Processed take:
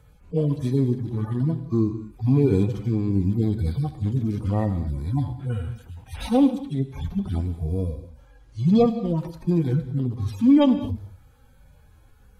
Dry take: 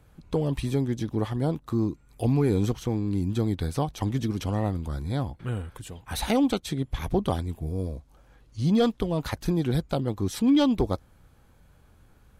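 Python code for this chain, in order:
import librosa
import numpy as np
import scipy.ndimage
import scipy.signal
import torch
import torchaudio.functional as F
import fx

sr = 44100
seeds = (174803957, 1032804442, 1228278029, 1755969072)

y = fx.hpss_only(x, sr, part='harmonic')
y = fx.rev_gated(y, sr, seeds[0], gate_ms=250, shape='flat', drr_db=10.5)
y = y * 10.0 ** (4.5 / 20.0)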